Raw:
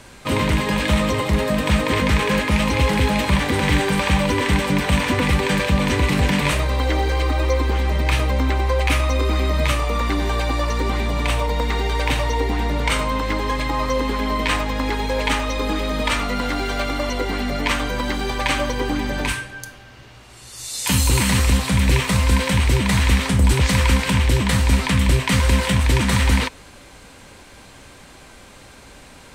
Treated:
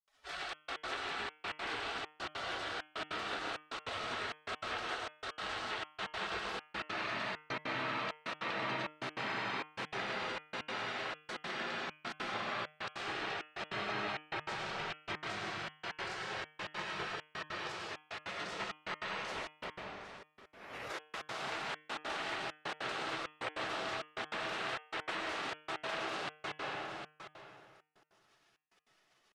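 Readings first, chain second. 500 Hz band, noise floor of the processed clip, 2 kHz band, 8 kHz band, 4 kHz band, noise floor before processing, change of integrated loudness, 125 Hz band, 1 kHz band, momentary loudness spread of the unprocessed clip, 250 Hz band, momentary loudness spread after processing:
-20.0 dB, -72 dBFS, -15.0 dB, -26.5 dB, -16.5 dB, -44 dBFS, -20.0 dB, -35.0 dB, -15.5 dB, 6 LU, -27.0 dB, 6 LU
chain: high-pass 72 Hz 6 dB/octave; bass shelf 490 Hz -6 dB; delay 760 ms -16.5 dB; spectral gate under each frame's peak -20 dB weak; bass shelf 100 Hz -7 dB; algorithmic reverb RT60 2.4 s, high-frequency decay 0.6×, pre-delay 65 ms, DRR -1.5 dB; compression 6:1, threshold -33 dBFS, peak gain reduction 9 dB; trance gate ".xxxxxx..x" 198 bpm -60 dB; low-pass 2.2 kHz 12 dB/octave; de-hum 152.8 Hz, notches 22; trim +2.5 dB

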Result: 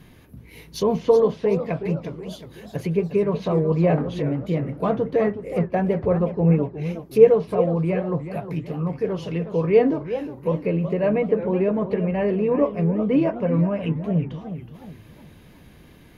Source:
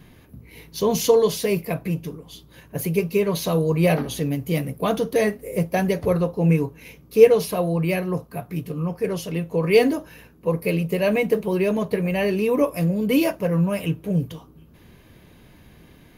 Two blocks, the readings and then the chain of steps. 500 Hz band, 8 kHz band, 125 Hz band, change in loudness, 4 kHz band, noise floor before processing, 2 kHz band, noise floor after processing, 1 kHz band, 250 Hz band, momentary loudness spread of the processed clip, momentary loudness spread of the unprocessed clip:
+0.5 dB, under -10 dB, +0.5 dB, 0.0 dB, no reading, -51 dBFS, -7.0 dB, -49 dBFS, 0.0 dB, +0.5 dB, 12 LU, 11 LU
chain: low-pass that closes with the level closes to 1.4 kHz, closed at -19.5 dBFS; modulated delay 367 ms, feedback 41%, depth 209 cents, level -11 dB

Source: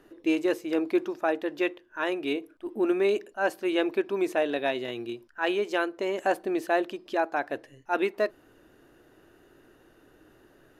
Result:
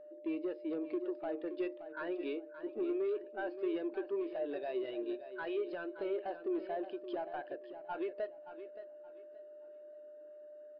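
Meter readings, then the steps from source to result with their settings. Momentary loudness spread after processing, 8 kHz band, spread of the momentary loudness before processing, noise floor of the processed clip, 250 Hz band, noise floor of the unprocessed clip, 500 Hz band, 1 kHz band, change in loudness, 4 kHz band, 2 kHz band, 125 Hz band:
16 LU, no reading, 6 LU, -53 dBFS, -10.0 dB, -60 dBFS, -9.5 dB, -14.0 dB, -11.0 dB, -18.0 dB, -16.5 dB, under -15 dB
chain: high-pass 310 Hz 12 dB/octave; peak limiter -18.5 dBFS, peak gain reduction 5.5 dB; compression 4:1, threshold -32 dBFS, peak gain reduction 8.5 dB; saturation -33.5 dBFS, distortion -11 dB; whistle 600 Hz -47 dBFS; on a send: feedback delay 573 ms, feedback 40%, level -8 dB; on the sum: resampled via 11.025 kHz; spectral contrast expander 1.5:1; trim +1 dB

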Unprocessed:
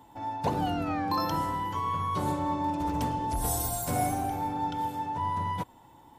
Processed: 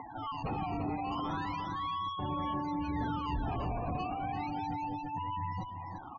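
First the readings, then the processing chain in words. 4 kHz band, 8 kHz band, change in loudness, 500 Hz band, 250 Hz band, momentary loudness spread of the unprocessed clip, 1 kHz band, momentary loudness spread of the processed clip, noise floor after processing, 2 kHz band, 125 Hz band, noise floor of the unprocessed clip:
-4.5 dB, under -30 dB, -6.0 dB, -7.5 dB, -4.5 dB, 4 LU, -6.0 dB, 3 LU, -45 dBFS, -3.5 dB, -4.5 dB, -55 dBFS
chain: decimation with a swept rate 15×, swing 160% 0.34 Hz; small resonant body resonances 760/1100 Hz, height 11 dB, ringing for 25 ms; valve stage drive 32 dB, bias 0.4; dynamic bell 780 Hz, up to -6 dB, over -47 dBFS, Q 0.78; upward compressor, threshold -41 dBFS; spectral gate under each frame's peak -15 dB strong; tape spacing loss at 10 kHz 20 dB; on a send: delay 344 ms -6.5 dB; on the sum: trim +4 dB

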